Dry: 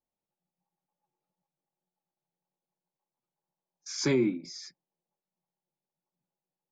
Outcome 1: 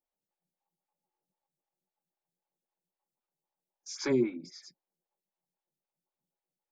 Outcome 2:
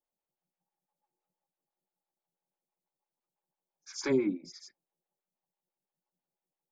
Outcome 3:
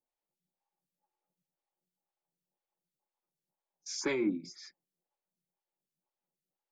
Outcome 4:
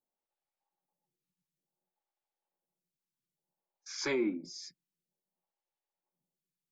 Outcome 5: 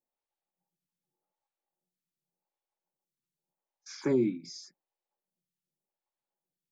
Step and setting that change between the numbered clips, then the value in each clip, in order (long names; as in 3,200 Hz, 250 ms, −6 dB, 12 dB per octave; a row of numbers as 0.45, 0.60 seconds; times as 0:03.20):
phaser with staggered stages, speed: 3.8, 6, 2, 0.57, 0.86 Hertz